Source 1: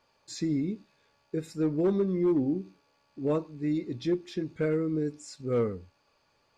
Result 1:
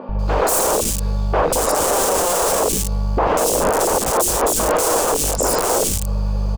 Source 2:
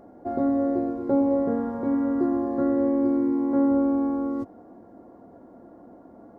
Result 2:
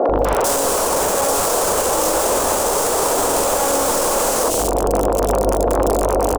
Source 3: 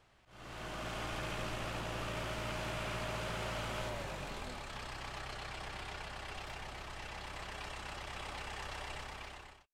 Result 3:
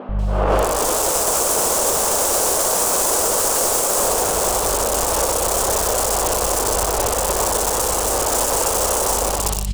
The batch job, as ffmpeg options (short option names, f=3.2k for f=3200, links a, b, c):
-filter_complex "[0:a]crystalizer=i=1.5:c=0,highshelf=f=5.6k:t=q:w=1.5:g=-9.5,aeval=exprs='val(0)+0.00447*(sin(2*PI*50*n/s)+sin(2*PI*2*50*n/s)/2+sin(2*PI*3*50*n/s)/3+sin(2*PI*4*50*n/s)/4+sin(2*PI*5*50*n/s)/5)':c=same,aeval=exprs='clip(val(0),-1,0.0531)':c=same,acompressor=threshold=-28dB:ratio=8,asplit=2[a][b];[b]aecho=0:1:11|21|59:0.237|0.266|0.398[c];[a][c]amix=inputs=2:normalize=0,aeval=exprs='(mod(63.1*val(0)+1,2)-1)/63.1':c=same,equalizer=f=125:t=o:w=1:g=-9,equalizer=f=500:t=o:w=1:g=11,equalizer=f=1k:t=o:w=1:g=4,equalizer=f=2k:t=o:w=1:g=-10,equalizer=f=4k:t=o:w=1:g=-8,equalizer=f=8k:t=o:w=1:g=8,acrossover=split=260|2600[d][e][f];[d]adelay=90[g];[f]adelay=190[h];[g][e][h]amix=inputs=3:normalize=0,alimiter=level_in=35dB:limit=-1dB:release=50:level=0:latency=1,volume=-6.5dB"